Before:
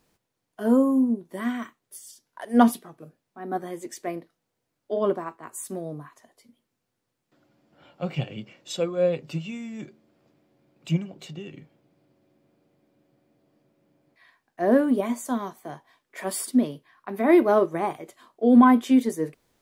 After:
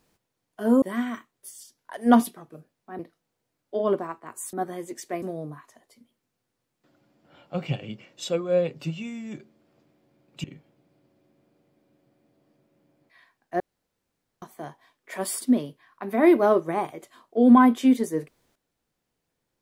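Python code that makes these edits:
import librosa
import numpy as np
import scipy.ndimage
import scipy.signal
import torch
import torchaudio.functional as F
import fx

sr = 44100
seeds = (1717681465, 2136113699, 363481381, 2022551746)

y = fx.edit(x, sr, fx.cut(start_s=0.82, length_s=0.48),
    fx.move(start_s=3.47, length_s=0.69, to_s=5.7),
    fx.cut(start_s=10.92, length_s=0.58),
    fx.room_tone_fill(start_s=14.66, length_s=0.82), tone=tone)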